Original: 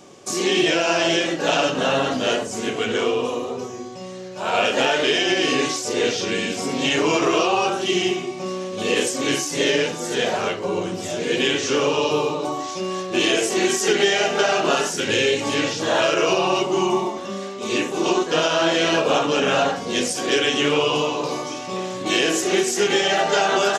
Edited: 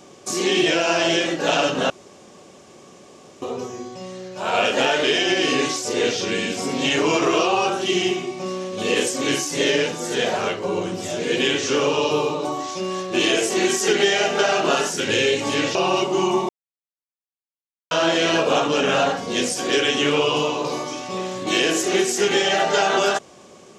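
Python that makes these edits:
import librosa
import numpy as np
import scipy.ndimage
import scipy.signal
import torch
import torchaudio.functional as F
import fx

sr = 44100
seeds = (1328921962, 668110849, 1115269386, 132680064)

y = fx.edit(x, sr, fx.room_tone_fill(start_s=1.9, length_s=1.52),
    fx.cut(start_s=15.75, length_s=0.59),
    fx.silence(start_s=17.08, length_s=1.42), tone=tone)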